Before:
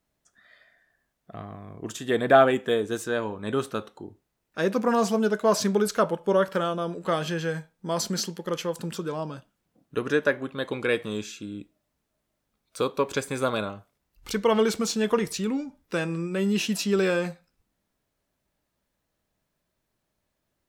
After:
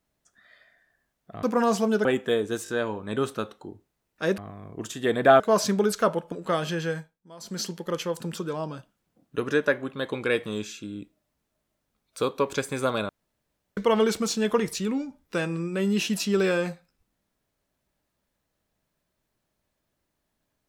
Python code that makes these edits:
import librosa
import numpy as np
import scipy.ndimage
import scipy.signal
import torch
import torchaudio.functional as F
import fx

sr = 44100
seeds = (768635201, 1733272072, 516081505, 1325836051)

y = fx.edit(x, sr, fx.swap(start_s=1.43, length_s=1.02, other_s=4.74, other_length_s=0.62),
    fx.stutter(start_s=3.04, slice_s=0.02, count=3),
    fx.cut(start_s=6.28, length_s=0.63),
    fx.fade_down_up(start_s=7.49, length_s=0.8, db=-18.5, fade_s=0.31),
    fx.room_tone_fill(start_s=13.68, length_s=0.68), tone=tone)